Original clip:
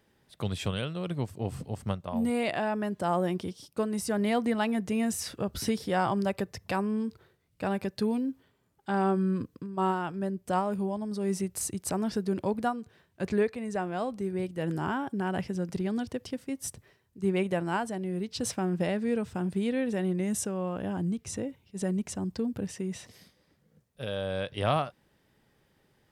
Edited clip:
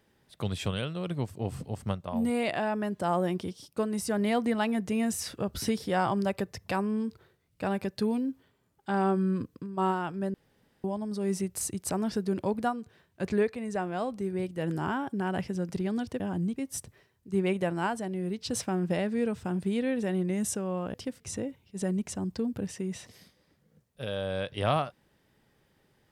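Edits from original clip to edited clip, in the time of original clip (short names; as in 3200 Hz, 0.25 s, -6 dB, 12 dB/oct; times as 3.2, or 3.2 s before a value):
10.34–10.84 room tone
16.2–16.46 swap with 20.84–21.2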